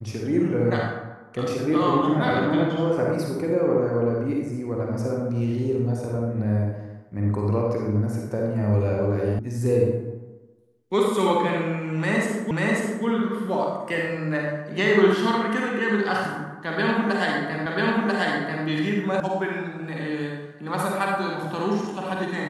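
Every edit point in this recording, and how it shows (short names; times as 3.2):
9.39 sound cut off
12.51 repeat of the last 0.54 s
17.66 repeat of the last 0.99 s
19.2 sound cut off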